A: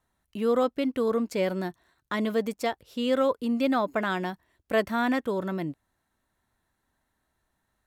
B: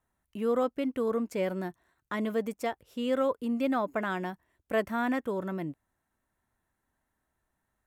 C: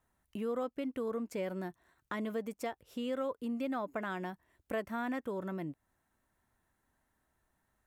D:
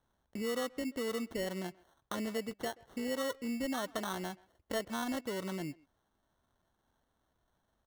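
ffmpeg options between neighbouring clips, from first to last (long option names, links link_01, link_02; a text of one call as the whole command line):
ffmpeg -i in.wav -af "equalizer=frequency=4200:width_type=o:width=0.74:gain=-8,volume=-3.5dB" out.wav
ffmpeg -i in.wav -af "acompressor=threshold=-43dB:ratio=2,volume=2dB" out.wav
ffmpeg -i in.wav -filter_complex "[0:a]acrusher=samples=18:mix=1:aa=0.000001,asplit=2[link_01][link_02];[link_02]adelay=130,highpass=300,lowpass=3400,asoftclip=type=hard:threshold=-34dB,volume=-21dB[link_03];[link_01][link_03]amix=inputs=2:normalize=0" out.wav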